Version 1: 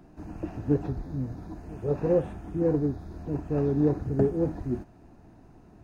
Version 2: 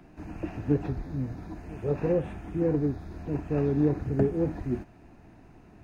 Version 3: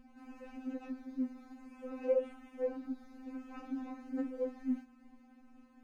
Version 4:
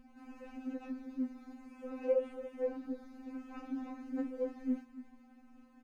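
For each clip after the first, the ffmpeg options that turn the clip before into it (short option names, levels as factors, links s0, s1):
-filter_complex "[0:a]equalizer=f=2300:w=1.4:g=8.5,acrossover=split=320[s0][s1];[s1]acompressor=threshold=0.0447:ratio=2.5[s2];[s0][s2]amix=inputs=2:normalize=0"
-af "aeval=exprs='val(0)+0.0126*(sin(2*PI*60*n/s)+sin(2*PI*2*60*n/s)/2+sin(2*PI*3*60*n/s)/3+sin(2*PI*4*60*n/s)/4+sin(2*PI*5*60*n/s)/5)':c=same,afftfilt=real='re*3.46*eq(mod(b,12),0)':imag='im*3.46*eq(mod(b,12),0)':win_size=2048:overlap=0.75,volume=0.473"
-af "aecho=1:1:284:0.188"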